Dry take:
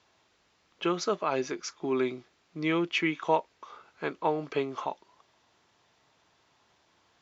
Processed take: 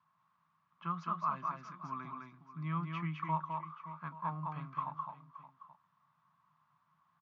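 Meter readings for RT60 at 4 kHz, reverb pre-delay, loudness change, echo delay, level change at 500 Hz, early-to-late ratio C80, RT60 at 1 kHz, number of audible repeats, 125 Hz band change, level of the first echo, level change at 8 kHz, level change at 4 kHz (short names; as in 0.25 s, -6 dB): none, none, -9.0 dB, 0.209 s, -24.5 dB, none, none, 3, +2.0 dB, -3.5 dB, n/a, -21.0 dB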